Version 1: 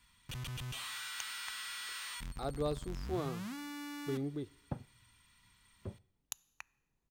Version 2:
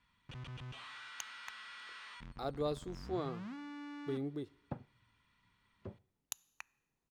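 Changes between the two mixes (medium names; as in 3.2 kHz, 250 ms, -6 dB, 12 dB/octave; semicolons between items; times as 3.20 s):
first sound: add tape spacing loss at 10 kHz 27 dB; master: add bass shelf 95 Hz -11 dB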